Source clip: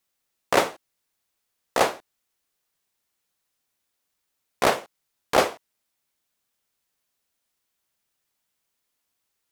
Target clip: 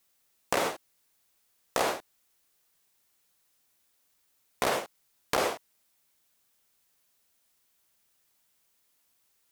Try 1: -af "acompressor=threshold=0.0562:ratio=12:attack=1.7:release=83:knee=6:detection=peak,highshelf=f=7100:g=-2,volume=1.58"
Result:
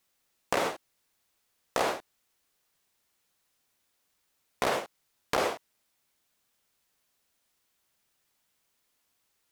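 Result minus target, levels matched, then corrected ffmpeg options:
8 kHz band -3.5 dB
-af "acompressor=threshold=0.0562:ratio=12:attack=1.7:release=83:knee=6:detection=peak,highshelf=f=7100:g=4.5,volume=1.58"

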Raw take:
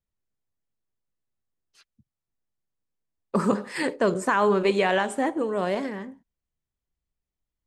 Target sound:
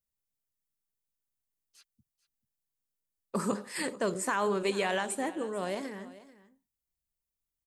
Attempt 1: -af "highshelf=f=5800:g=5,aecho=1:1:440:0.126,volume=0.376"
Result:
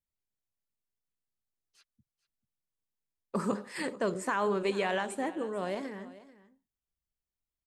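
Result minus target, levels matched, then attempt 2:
8 kHz band -7.0 dB
-af "highshelf=f=5800:g=16.5,aecho=1:1:440:0.126,volume=0.376"

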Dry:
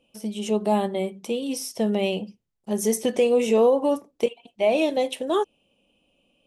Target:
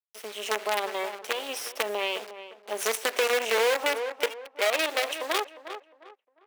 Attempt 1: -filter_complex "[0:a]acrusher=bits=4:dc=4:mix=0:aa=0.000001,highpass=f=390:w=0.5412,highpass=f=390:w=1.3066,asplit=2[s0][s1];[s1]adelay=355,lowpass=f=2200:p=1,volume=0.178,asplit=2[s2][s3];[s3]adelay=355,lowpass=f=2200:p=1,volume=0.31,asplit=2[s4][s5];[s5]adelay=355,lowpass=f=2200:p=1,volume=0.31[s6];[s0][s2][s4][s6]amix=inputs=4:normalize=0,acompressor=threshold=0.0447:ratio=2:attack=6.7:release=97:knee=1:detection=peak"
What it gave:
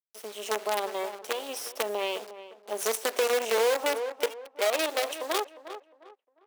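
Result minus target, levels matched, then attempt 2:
2 kHz band -3.5 dB
-filter_complex "[0:a]acrusher=bits=4:dc=4:mix=0:aa=0.000001,highpass=f=390:w=0.5412,highpass=f=390:w=1.3066,equalizer=f=2200:t=o:w=1.7:g=7,asplit=2[s0][s1];[s1]adelay=355,lowpass=f=2200:p=1,volume=0.178,asplit=2[s2][s3];[s3]adelay=355,lowpass=f=2200:p=1,volume=0.31,asplit=2[s4][s5];[s5]adelay=355,lowpass=f=2200:p=1,volume=0.31[s6];[s0][s2][s4][s6]amix=inputs=4:normalize=0,acompressor=threshold=0.0447:ratio=2:attack=6.7:release=97:knee=1:detection=peak"

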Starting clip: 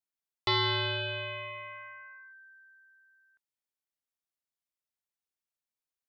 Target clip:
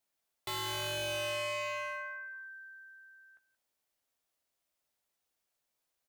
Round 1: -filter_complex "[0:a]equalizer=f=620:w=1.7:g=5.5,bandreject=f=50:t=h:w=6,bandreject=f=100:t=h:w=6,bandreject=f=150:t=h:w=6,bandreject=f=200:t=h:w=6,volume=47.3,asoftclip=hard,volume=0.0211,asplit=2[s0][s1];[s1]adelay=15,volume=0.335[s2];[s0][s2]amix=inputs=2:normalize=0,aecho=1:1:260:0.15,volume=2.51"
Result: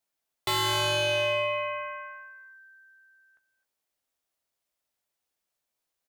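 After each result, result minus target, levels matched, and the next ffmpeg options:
echo 83 ms late; overload inside the chain: distortion -5 dB
-filter_complex "[0:a]equalizer=f=620:w=1.7:g=5.5,bandreject=f=50:t=h:w=6,bandreject=f=100:t=h:w=6,bandreject=f=150:t=h:w=6,bandreject=f=200:t=h:w=6,volume=47.3,asoftclip=hard,volume=0.0211,asplit=2[s0][s1];[s1]adelay=15,volume=0.335[s2];[s0][s2]amix=inputs=2:normalize=0,aecho=1:1:177:0.15,volume=2.51"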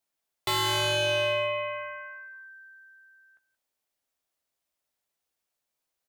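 overload inside the chain: distortion -5 dB
-filter_complex "[0:a]equalizer=f=620:w=1.7:g=5.5,bandreject=f=50:t=h:w=6,bandreject=f=100:t=h:w=6,bandreject=f=150:t=h:w=6,bandreject=f=200:t=h:w=6,volume=168,asoftclip=hard,volume=0.00596,asplit=2[s0][s1];[s1]adelay=15,volume=0.335[s2];[s0][s2]amix=inputs=2:normalize=0,aecho=1:1:177:0.15,volume=2.51"

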